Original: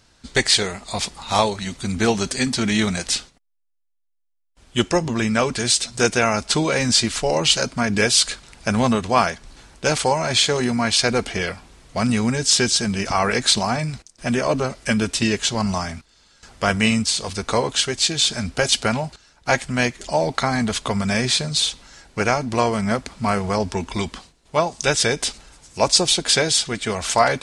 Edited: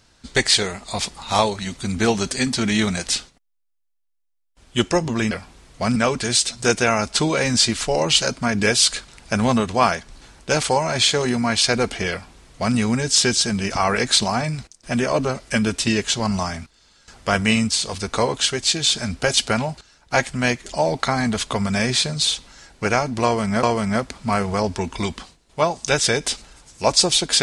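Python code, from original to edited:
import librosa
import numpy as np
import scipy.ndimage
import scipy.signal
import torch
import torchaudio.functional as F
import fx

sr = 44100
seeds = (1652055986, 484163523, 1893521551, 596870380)

y = fx.edit(x, sr, fx.duplicate(start_s=11.46, length_s=0.65, to_s=5.31),
    fx.repeat(start_s=22.59, length_s=0.39, count=2), tone=tone)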